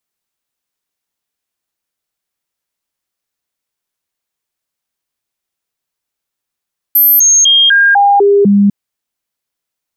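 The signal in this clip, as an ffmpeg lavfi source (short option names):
-f lavfi -i "aevalsrc='0.596*clip(min(mod(t,0.25),0.25-mod(t,0.25))/0.005,0,1)*sin(2*PI*12900*pow(2,-floor(t/0.25)/1)*mod(t,0.25))':d=1.75:s=44100"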